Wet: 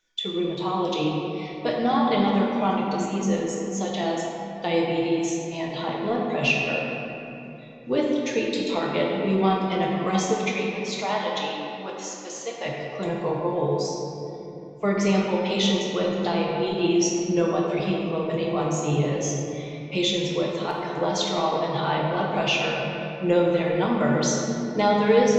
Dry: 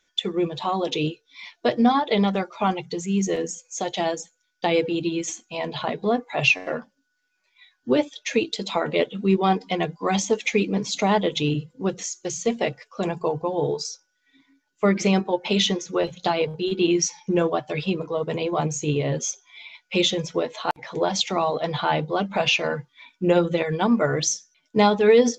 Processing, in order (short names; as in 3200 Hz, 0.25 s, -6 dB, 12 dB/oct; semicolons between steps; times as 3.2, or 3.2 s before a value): 10.48–12.66 BPF 620–7300 Hz; shoebox room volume 150 m³, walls hard, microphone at 0.61 m; gain -5.5 dB